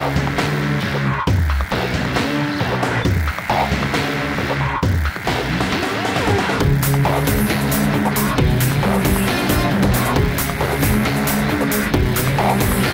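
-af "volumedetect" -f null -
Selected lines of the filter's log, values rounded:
mean_volume: -17.5 dB
max_volume: -4.9 dB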